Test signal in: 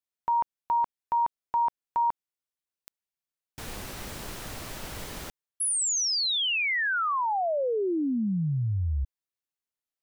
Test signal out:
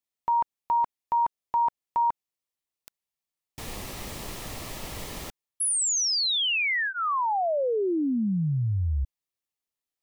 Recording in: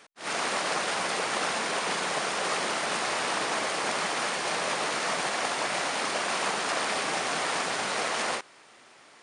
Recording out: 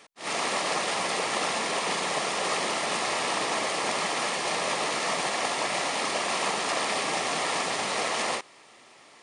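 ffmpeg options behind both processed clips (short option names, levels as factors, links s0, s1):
-af "bandreject=f=1500:w=5.5,volume=1.19"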